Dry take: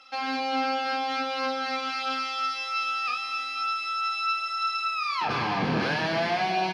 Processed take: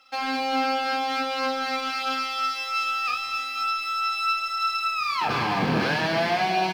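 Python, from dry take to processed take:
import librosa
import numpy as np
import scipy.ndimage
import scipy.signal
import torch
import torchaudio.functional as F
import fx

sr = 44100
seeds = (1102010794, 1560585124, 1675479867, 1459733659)

y = fx.law_mismatch(x, sr, coded='A')
y = y * librosa.db_to_amplitude(3.5)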